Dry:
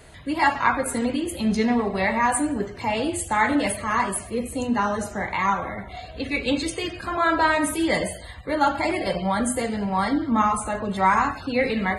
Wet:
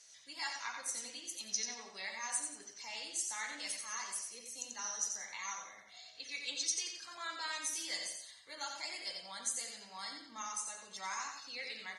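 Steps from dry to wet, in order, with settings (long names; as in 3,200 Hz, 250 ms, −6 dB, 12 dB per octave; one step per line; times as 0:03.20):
resonant band-pass 5,800 Hz, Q 15
repeating echo 89 ms, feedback 29%, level −5.5 dB
level +14 dB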